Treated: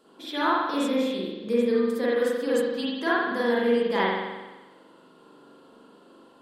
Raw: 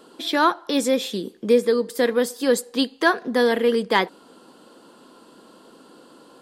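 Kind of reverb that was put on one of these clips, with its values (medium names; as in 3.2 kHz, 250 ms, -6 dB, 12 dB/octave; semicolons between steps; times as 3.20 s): spring tank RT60 1.2 s, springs 42 ms, chirp 45 ms, DRR -8 dB; trim -12.5 dB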